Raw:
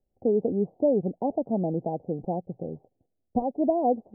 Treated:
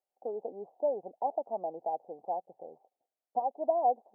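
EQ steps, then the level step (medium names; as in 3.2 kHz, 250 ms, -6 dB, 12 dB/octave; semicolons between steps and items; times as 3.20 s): resonant high-pass 830 Hz, resonance Q 2; -4.0 dB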